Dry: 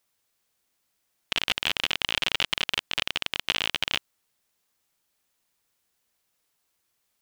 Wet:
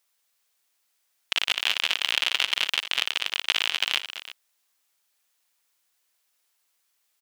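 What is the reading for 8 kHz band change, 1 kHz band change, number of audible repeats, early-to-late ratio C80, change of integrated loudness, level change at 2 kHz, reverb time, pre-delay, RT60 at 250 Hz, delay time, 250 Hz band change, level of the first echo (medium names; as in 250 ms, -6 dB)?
+3.0 dB, 0.0 dB, 3, no reverb, +2.0 dB, +2.0 dB, no reverb, no reverb, no reverb, 59 ms, -9.0 dB, -17.0 dB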